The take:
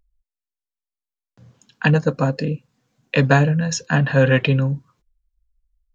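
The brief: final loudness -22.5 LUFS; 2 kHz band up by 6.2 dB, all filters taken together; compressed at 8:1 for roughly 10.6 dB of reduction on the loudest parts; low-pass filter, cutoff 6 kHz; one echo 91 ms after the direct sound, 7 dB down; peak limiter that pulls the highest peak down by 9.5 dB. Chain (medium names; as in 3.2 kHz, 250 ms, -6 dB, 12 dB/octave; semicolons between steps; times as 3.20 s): low-pass 6 kHz; peaking EQ 2 kHz +8 dB; compression 8:1, threshold -19 dBFS; peak limiter -14 dBFS; delay 91 ms -7 dB; trim +2.5 dB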